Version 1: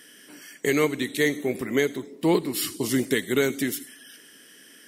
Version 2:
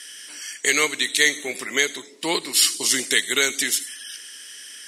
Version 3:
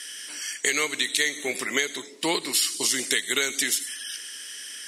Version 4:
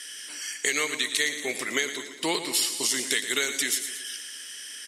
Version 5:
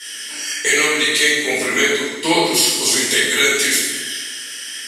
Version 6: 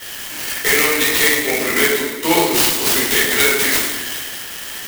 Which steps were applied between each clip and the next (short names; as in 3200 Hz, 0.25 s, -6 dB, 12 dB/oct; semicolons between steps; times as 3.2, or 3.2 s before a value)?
weighting filter ITU-R 468; gain +2.5 dB
compressor 6:1, threshold -22 dBFS, peak gain reduction 9.5 dB; gain +1.5 dB
feedback echo 0.114 s, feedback 58%, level -11.5 dB; gain -2 dB
shoebox room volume 310 m³, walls mixed, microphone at 4.5 m
clock jitter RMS 0.05 ms; gain +1 dB